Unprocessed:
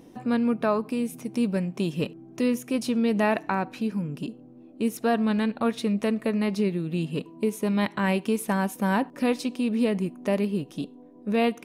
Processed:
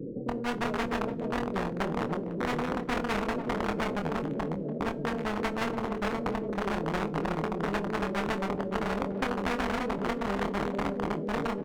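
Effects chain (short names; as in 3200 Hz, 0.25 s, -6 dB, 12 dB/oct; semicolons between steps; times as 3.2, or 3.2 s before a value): regenerating reverse delay 0.285 s, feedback 63%, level -1.5 dB; steep low-pass 520 Hz 72 dB/oct; tilt -2 dB/oct; compressor 10:1, threshold -18 dBFS, peak gain reduction 7 dB; resonant low shelf 110 Hz -13.5 dB, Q 1.5; flange 1.4 Hz, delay 6.2 ms, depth 9.8 ms, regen +17%; one-sided clip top -20 dBFS, bottom -15.5 dBFS; doubler 25 ms -6.5 dB; speakerphone echo 0.29 s, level -19 dB; on a send at -13.5 dB: reverb, pre-delay 3 ms; on the sum: spectral compressor 4:1; gain -2 dB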